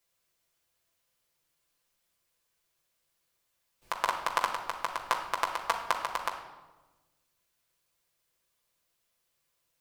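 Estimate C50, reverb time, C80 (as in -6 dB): 7.0 dB, 1.2 s, 9.5 dB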